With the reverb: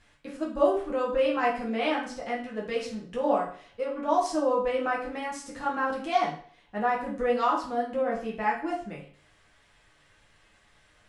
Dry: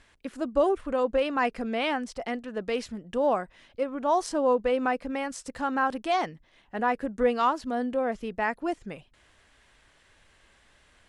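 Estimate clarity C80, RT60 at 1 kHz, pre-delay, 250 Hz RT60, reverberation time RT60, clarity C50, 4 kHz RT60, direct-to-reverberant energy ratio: 11.0 dB, 0.50 s, 7 ms, 0.50 s, 0.50 s, 6.5 dB, 0.45 s, -4.5 dB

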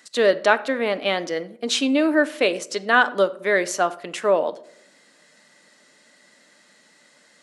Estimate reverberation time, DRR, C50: 0.70 s, 11.0 dB, 17.5 dB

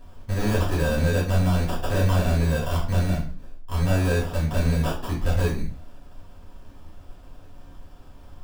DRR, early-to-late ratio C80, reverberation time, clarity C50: -6.5 dB, 11.5 dB, 0.45 s, 7.0 dB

